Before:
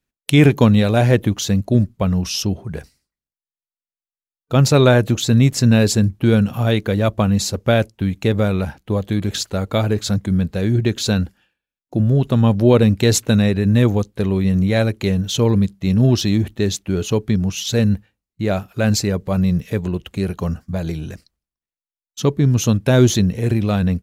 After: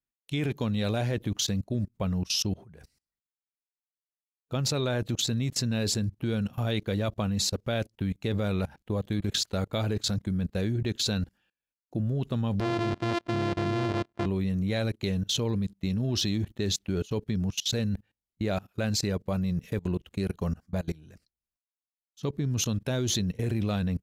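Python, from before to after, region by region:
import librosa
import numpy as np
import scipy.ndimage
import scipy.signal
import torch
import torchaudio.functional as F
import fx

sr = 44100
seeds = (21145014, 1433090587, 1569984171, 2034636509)

y = fx.chain(x, sr, fx.sample_sort(block=128),
    fx.highpass(hz=120.0, slope=6),
    fx.spacing_loss(db_at_10k=23), at=(12.6, 14.26))
y = fx.dynamic_eq(y, sr, hz=4000.0, q=1.2, threshold_db=-38.0, ratio=4.0, max_db=5)
y = fx.level_steps(y, sr, step_db=23)
y = y * 10.0 ** (-4.5 / 20.0)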